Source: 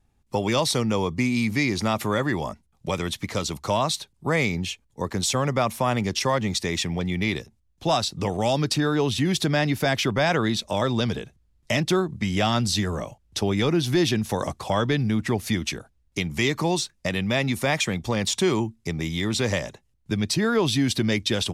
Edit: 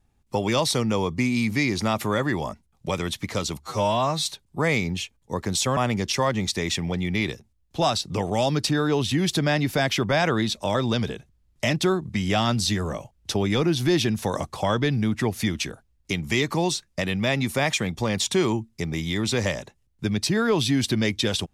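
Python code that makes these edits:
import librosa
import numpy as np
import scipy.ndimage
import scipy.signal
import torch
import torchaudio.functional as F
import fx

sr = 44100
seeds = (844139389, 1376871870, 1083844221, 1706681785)

y = fx.edit(x, sr, fx.stretch_span(start_s=3.61, length_s=0.32, factor=2.0),
    fx.cut(start_s=5.45, length_s=0.39), tone=tone)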